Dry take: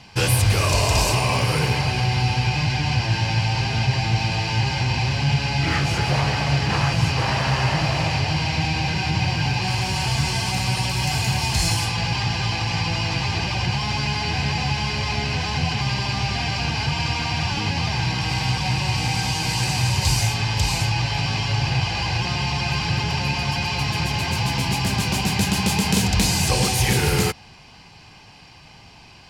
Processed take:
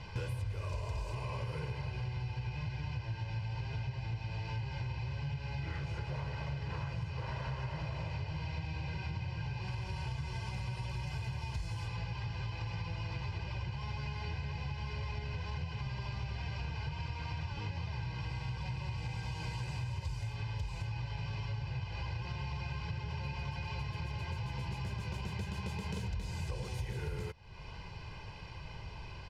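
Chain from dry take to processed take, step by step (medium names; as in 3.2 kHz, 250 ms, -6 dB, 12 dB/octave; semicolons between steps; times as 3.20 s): low-pass 1.9 kHz 6 dB/octave; bass shelf 100 Hz +9 dB; comb 2 ms, depth 59%; compression, threshold -35 dBFS, peak gain reduction 25 dB; trim -2.5 dB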